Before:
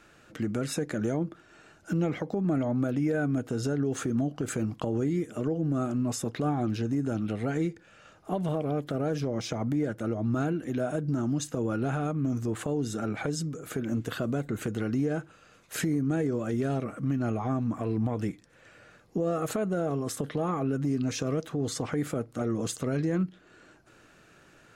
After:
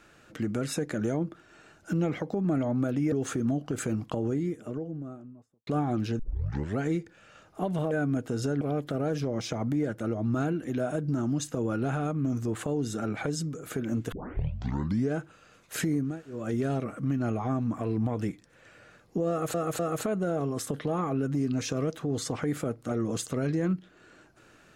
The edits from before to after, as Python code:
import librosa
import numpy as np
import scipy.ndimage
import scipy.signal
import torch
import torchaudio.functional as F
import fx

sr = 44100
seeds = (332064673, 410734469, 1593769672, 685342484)

y = fx.studio_fade_out(x, sr, start_s=4.66, length_s=1.71)
y = fx.edit(y, sr, fx.move(start_s=3.12, length_s=0.7, to_s=8.61),
    fx.tape_start(start_s=6.89, length_s=0.6),
    fx.tape_start(start_s=14.12, length_s=1.01),
    fx.room_tone_fill(start_s=16.11, length_s=0.26, crossfade_s=0.24),
    fx.repeat(start_s=19.29, length_s=0.25, count=3), tone=tone)